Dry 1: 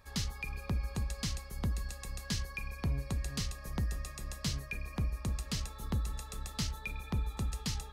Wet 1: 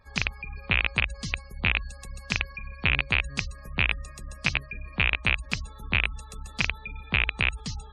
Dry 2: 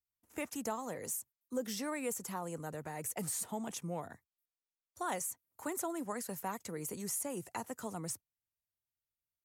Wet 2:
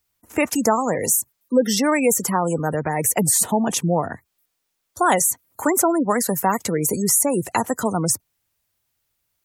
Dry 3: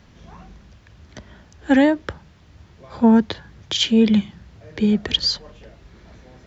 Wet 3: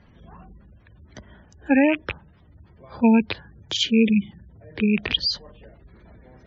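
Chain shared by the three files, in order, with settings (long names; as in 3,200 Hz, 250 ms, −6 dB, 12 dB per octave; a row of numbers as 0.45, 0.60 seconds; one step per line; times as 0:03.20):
loose part that buzzes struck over −31 dBFS, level −9 dBFS
gate on every frequency bin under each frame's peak −25 dB strong
normalise the peak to −6 dBFS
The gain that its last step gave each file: +2.0, +20.0, −3.0 decibels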